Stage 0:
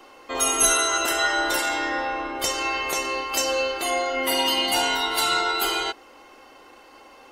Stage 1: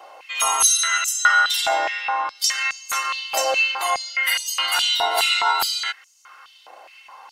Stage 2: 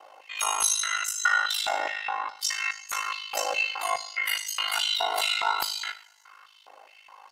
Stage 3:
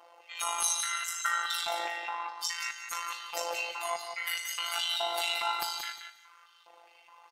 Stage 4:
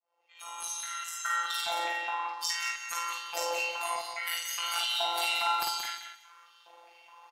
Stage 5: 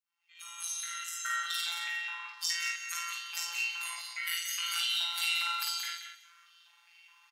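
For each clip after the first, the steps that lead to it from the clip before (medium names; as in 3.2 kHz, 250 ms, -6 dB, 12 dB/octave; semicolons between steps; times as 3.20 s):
step-sequenced high-pass 4.8 Hz 670–6600 Hz
two-slope reverb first 0.54 s, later 2 s, from -21 dB, DRR 9.5 dB; ring modulator 26 Hz; trim -4.5 dB
robot voice 171 Hz; feedback delay 178 ms, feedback 20%, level -7.5 dB; trim -3.5 dB
fade-in on the opening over 1.93 s; doubling 49 ms -2.5 dB
high-pass 1.5 kHz 24 dB/octave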